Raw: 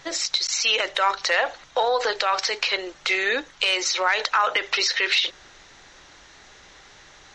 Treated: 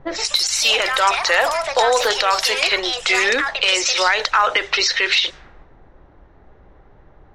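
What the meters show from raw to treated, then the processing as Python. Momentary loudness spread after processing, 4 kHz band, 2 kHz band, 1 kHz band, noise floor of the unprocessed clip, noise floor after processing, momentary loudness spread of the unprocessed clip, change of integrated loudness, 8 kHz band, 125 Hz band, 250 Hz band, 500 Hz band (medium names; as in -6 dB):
2 LU, +5.5 dB, +5.5 dB, +5.5 dB, -50 dBFS, -50 dBFS, 4 LU, +5.5 dB, +6.0 dB, no reading, +6.0 dB, +5.5 dB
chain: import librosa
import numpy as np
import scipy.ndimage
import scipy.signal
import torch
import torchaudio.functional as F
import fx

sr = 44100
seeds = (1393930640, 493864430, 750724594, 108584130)

p1 = fx.low_shelf(x, sr, hz=110.0, db=9.5)
p2 = fx.echo_pitch(p1, sr, ms=138, semitones=5, count=3, db_per_echo=-6.0)
p3 = fx.env_lowpass(p2, sr, base_hz=590.0, full_db=-19.0)
p4 = fx.rider(p3, sr, range_db=10, speed_s=0.5)
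p5 = p3 + (p4 * 10.0 ** (-1.0 / 20.0))
y = p5 * 10.0 ** (-1.0 / 20.0)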